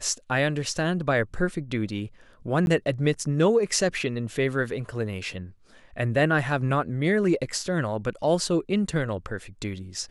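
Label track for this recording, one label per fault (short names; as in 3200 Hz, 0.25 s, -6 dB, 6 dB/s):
2.660000	2.670000	gap 11 ms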